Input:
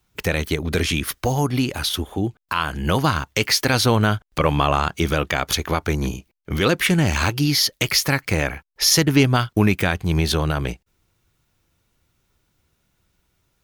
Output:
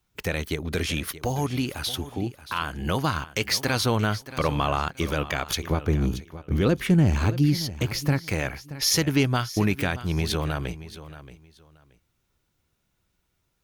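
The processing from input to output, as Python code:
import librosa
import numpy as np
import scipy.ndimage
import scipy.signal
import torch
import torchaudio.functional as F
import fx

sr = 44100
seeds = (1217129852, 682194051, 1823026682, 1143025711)

y = fx.tilt_shelf(x, sr, db=7.0, hz=670.0, at=(5.7, 8.21))
y = fx.echo_feedback(y, sr, ms=627, feedback_pct=21, wet_db=-15.0)
y = F.gain(torch.from_numpy(y), -6.0).numpy()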